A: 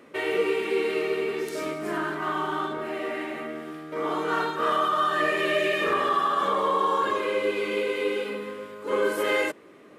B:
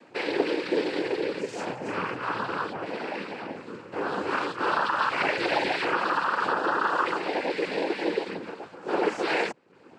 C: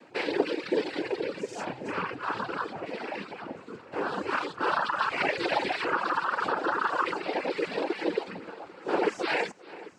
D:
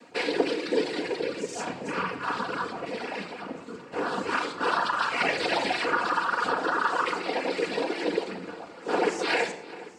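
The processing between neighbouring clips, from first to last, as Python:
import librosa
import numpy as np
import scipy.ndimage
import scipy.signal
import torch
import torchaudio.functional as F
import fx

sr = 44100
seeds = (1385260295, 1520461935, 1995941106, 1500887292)

y1 = fx.dereverb_blind(x, sr, rt60_s=0.55)
y1 = fx.noise_vocoder(y1, sr, seeds[0], bands=8)
y2 = fx.dereverb_blind(y1, sr, rt60_s=1.6)
y2 = fx.echo_heads(y2, sr, ms=397, heads='first and second', feedback_pct=47, wet_db=-21)
y3 = fx.peak_eq(y2, sr, hz=8200.0, db=8.5, octaves=1.6)
y3 = fx.room_shoebox(y3, sr, seeds[1], volume_m3=2800.0, walls='furnished', distance_m=1.8)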